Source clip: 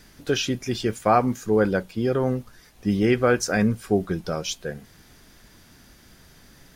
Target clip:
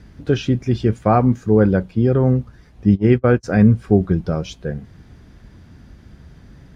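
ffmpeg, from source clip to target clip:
-filter_complex "[0:a]asplit=3[s0][s1][s2];[s0]afade=t=out:st=2.94:d=0.02[s3];[s1]agate=range=0.0141:threshold=0.112:ratio=16:detection=peak,afade=t=in:st=2.94:d=0.02,afade=t=out:st=3.43:d=0.02[s4];[s2]afade=t=in:st=3.43:d=0.02[s5];[s3][s4][s5]amix=inputs=3:normalize=0,highpass=60,aemphasis=mode=reproduction:type=riaa,volume=1.12"

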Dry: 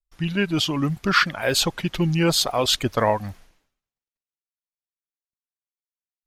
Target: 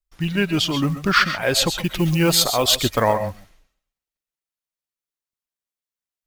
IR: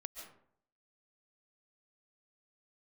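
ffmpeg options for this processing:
-filter_complex "[0:a]acrusher=bits=7:mode=log:mix=0:aa=0.000001,asettb=1/sr,asplit=3[s0][s1][s2];[s0]atrim=end=1.744[s3];[s1]atrim=start=1.74:end=3.02,asetpts=PTS-STARTPTS,afade=t=in:d=0.004:c=qsin,afade=t=out:st=1.276:d=0.004:c=qsin,highshelf=f=9500:g=10[s4];[s2]atrim=start=3.016[s5];[s3][s4]acrossfade=d=0.004:c1=hsin:c2=qsin[s6];[s6][s5]acrossfade=d=0.004:c1=qsin:c2=hsin[s7];[1:a]atrim=start_sample=2205,atrim=end_sample=6174[s8];[s7][s8]afir=irnorm=-1:irlink=0,volume=2.24"

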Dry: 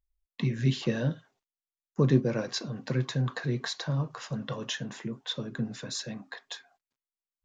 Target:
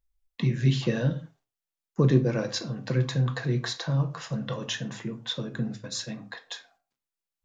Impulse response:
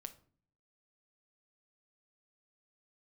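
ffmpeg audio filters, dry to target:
-filter_complex "[0:a]asplit=3[s0][s1][s2];[s0]afade=t=out:st=5.62:d=0.02[s3];[s1]agate=range=0.0891:threshold=0.0126:ratio=16:detection=peak,afade=t=in:st=5.62:d=0.02,afade=t=out:st=6.17:d=0.02[s4];[s2]afade=t=in:st=6.17:d=0.02[s5];[s3][s4][s5]amix=inputs=3:normalize=0[s6];[1:a]atrim=start_sample=2205,afade=t=out:st=0.22:d=0.01,atrim=end_sample=10143[s7];[s6][s7]afir=irnorm=-1:irlink=0,volume=2.24"

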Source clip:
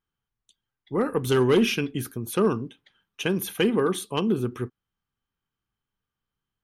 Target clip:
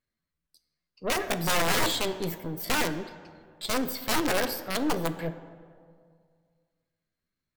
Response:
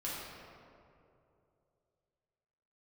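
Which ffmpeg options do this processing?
-filter_complex "[0:a]aeval=exprs='(mod(7.08*val(0)+1,2)-1)/7.08':c=same,aeval=exprs='0.141*(cos(1*acos(clip(val(0)/0.141,-1,1)))-cos(1*PI/2))+0.0178*(cos(4*acos(clip(val(0)/0.141,-1,1)))-cos(4*PI/2))+0.0126*(cos(5*acos(clip(val(0)/0.141,-1,1)))-cos(5*PI/2))+0.00224*(cos(7*acos(clip(val(0)/0.141,-1,1)))-cos(7*PI/2))':c=same,atempo=0.65,asplit=2[s0][s1];[1:a]atrim=start_sample=2205[s2];[s1][s2]afir=irnorm=-1:irlink=0,volume=0.251[s3];[s0][s3]amix=inputs=2:normalize=0,asetrate=59535,aresample=44100,volume=0.596"

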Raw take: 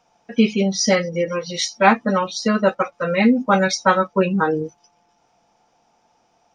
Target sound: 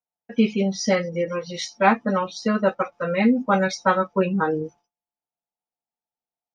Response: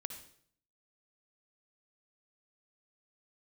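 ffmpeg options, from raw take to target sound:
-af "agate=range=0.0224:threshold=0.0141:ratio=3:detection=peak,highshelf=f=3800:g=-8,volume=0.708"

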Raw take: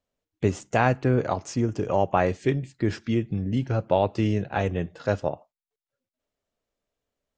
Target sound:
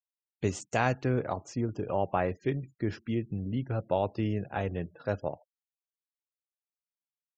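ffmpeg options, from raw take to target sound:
-af "asetnsamples=n=441:p=0,asendcmd='1.19 highshelf g -3.5',highshelf=f=3800:g=10,afftfilt=real='re*gte(hypot(re,im),0.00562)':imag='im*gte(hypot(re,im),0.00562)':win_size=1024:overlap=0.75,volume=0.473"

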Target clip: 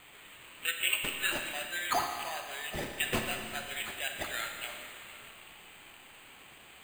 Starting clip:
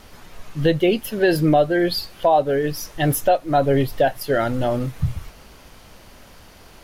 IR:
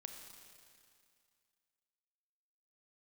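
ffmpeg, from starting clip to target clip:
-filter_complex "[0:a]highpass=f=2500:t=q:w=2,acrusher=samples=8:mix=1:aa=0.000001[s0];[1:a]atrim=start_sample=2205[s1];[s0][s1]afir=irnorm=-1:irlink=0"

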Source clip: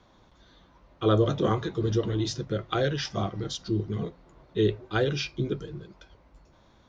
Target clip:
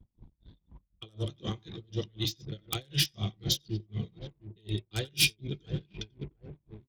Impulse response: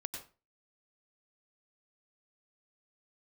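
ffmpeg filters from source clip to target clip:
-filter_complex "[0:a]bass=f=250:g=11,treble=f=4000:g=-8,acrossover=split=190|1900[s0][s1][s2];[s2]aeval=exprs='0.0211*(abs(mod(val(0)/0.0211+3,4)-2)-1)':c=same[s3];[s0][s1][s3]amix=inputs=3:normalize=0[s4];[1:a]atrim=start_sample=2205,afade=t=out:st=0.14:d=0.01,atrim=end_sample=6615[s5];[s4][s5]afir=irnorm=-1:irlink=0,asoftclip=type=tanh:threshold=0.355,asplit=2[s6][s7];[s7]adelay=706,lowpass=f=1400:p=1,volume=0.141,asplit=2[s8][s9];[s9]adelay=706,lowpass=f=1400:p=1,volume=0.46,asplit=2[s10][s11];[s11]adelay=706,lowpass=f=1400:p=1,volume=0.46,asplit=2[s12][s13];[s13]adelay=706,lowpass=f=1400:p=1,volume=0.46[s14];[s6][s8][s10][s12][s14]amix=inputs=5:normalize=0,areverse,acompressor=threshold=0.0282:ratio=16,areverse,anlmdn=0.00158,aexciter=amount=12.3:drive=2.5:freq=2200,aeval=exprs='val(0)*pow(10,-33*(0.5-0.5*cos(2*PI*4*n/s))/20)':c=same,volume=1.68"

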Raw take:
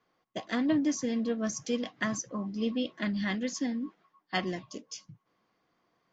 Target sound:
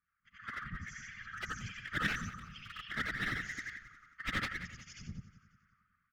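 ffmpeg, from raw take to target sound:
-filter_complex "[0:a]afftfilt=real='re':imag='-im':win_size=8192:overlap=0.75,firequalizer=gain_entry='entry(100,0);entry(340,-9);entry(600,10);entry(3800,-22);entry(5400,-19)':delay=0.05:min_phase=1,flanger=delay=0.4:depth=6.5:regen=-1:speed=0.59:shape=triangular,dynaudnorm=f=280:g=9:m=6.31,aeval=exprs='0.158*(abs(mod(val(0)/0.158+3,4)-2)-1)':c=same,alimiter=limit=0.075:level=0:latency=1:release=87,acrossover=split=4400[s0][s1];[s1]acompressor=threshold=0.00141:ratio=4:attack=1:release=60[s2];[s0][s2]amix=inputs=2:normalize=0,afftfilt=real='re*(1-between(b*sr/4096,130,1200))':imag='im*(1-between(b*sr/4096,130,1200))':win_size=4096:overlap=0.75,aeval=exprs='clip(val(0),-1,0.00891)':c=same,equalizer=f=190:t=o:w=0.88:g=13,afftfilt=real='hypot(re,im)*cos(2*PI*random(0))':imag='hypot(re,im)*sin(2*PI*random(1))':win_size=512:overlap=0.75,asplit=2[s3][s4];[s4]aecho=0:1:180|360|540|720:0.158|0.0666|0.028|0.0117[s5];[s3][s5]amix=inputs=2:normalize=0,volume=2.99"

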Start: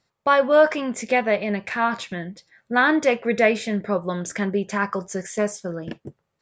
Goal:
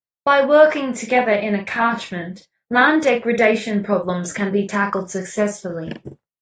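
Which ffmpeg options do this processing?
-filter_complex "[0:a]agate=range=0.0224:threshold=0.0126:ratio=3:detection=peak,adynamicequalizer=threshold=0.00562:dfrequency=5900:dqfactor=1.1:tfrequency=5900:tqfactor=1.1:attack=5:release=100:ratio=0.375:range=2:mode=cutabove:tftype=bell,asplit=2[s0][s1];[s1]adelay=44,volume=0.422[s2];[s0][s2]amix=inputs=2:normalize=0,volume=1.41" -ar 48000 -c:a aac -b:a 32k

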